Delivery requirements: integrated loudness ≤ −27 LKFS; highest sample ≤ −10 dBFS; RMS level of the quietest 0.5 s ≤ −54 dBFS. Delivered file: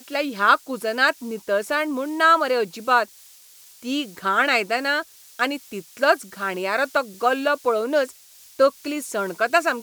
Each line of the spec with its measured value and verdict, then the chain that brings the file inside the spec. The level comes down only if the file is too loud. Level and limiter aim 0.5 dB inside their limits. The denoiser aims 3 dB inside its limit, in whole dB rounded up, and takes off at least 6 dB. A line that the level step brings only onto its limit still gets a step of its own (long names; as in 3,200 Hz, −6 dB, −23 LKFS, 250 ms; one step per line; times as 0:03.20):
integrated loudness −22.0 LKFS: out of spec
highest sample −4.0 dBFS: out of spec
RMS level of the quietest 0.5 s −49 dBFS: out of spec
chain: level −5.5 dB
brickwall limiter −10.5 dBFS